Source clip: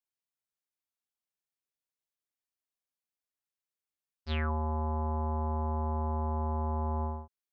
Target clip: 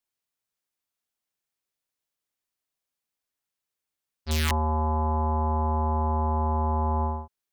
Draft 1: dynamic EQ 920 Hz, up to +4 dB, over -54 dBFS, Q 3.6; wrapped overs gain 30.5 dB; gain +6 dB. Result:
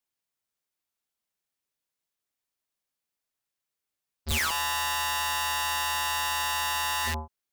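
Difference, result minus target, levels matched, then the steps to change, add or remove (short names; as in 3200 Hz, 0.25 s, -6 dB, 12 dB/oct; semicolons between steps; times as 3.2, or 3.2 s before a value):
wrapped overs: distortion +28 dB
change: wrapped overs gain 24 dB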